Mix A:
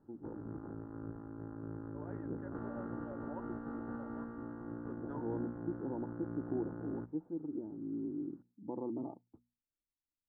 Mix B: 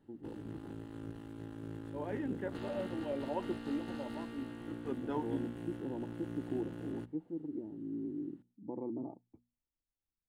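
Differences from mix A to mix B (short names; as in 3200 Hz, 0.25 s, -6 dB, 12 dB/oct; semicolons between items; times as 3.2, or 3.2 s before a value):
second voice +12.0 dB; background: remove LPF 1200 Hz 12 dB/oct; master: add resonant high shelf 1900 Hz +10.5 dB, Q 3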